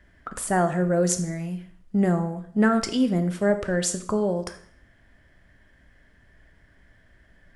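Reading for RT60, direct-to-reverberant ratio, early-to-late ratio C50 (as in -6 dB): 0.60 s, 8.0 dB, 12.0 dB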